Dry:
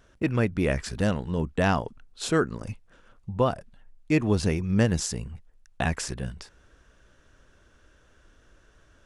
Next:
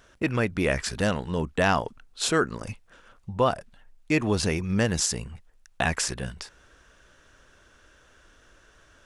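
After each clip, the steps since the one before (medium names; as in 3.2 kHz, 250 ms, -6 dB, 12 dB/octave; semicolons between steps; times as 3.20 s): in parallel at 0 dB: peak limiter -17 dBFS, peak gain reduction 9 dB; on the sum: bass shelf 460 Hz -8 dB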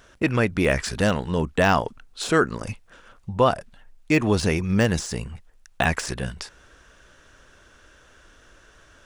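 de-esser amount 60%; trim +4 dB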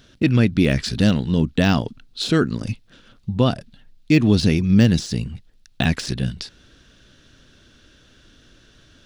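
graphic EQ 125/250/500/1000/2000/4000/8000 Hz +7/+8/-3/-8/-3/+10/-6 dB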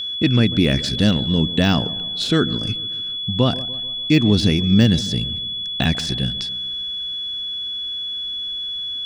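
whistle 3.4 kHz -24 dBFS; feedback echo behind a low-pass 145 ms, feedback 51%, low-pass 1.2 kHz, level -16 dB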